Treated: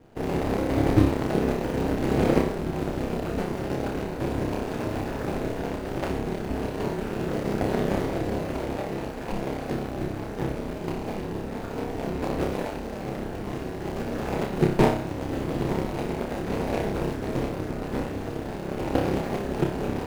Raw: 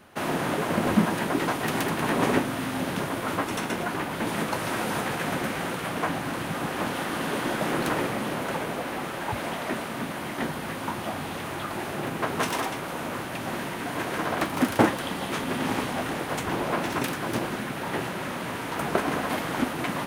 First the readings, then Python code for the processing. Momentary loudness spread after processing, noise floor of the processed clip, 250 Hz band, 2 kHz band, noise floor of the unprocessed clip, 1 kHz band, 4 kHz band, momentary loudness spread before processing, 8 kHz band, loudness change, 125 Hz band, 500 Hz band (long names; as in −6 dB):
10 LU, −34 dBFS, +1.5 dB, −7.5 dB, −34 dBFS, −4.5 dB, −7.5 dB, 7 LU, −8.5 dB, 0.0 dB, +5.0 dB, +2.5 dB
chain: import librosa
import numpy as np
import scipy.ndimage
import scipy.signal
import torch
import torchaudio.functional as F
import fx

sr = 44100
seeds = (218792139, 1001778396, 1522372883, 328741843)

y = scipy.signal.medfilt(x, 41)
y = fx.room_flutter(y, sr, wall_m=5.1, rt60_s=0.46)
y = y * np.sin(2.0 * np.pi * 100.0 * np.arange(len(y)) / sr)
y = y * librosa.db_to_amplitude(5.0)